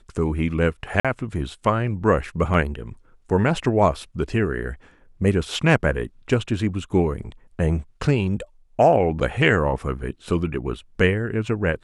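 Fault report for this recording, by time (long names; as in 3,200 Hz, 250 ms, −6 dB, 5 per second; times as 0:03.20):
0:01.00–0:01.05: drop-out 46 ms
0:02.54: drop-out 3 ms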